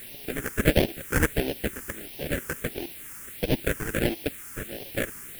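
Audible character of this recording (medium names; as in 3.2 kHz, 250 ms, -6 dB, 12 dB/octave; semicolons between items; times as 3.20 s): aliases and images of a low sample rate 1.1 kHz, jitter 20%; random-step tremolo, depth 95%; a quantiser's noise floor 8-bit, dither triangular; phasing stages 4, 1.5 Hz, lowest notch 640–1300 Hz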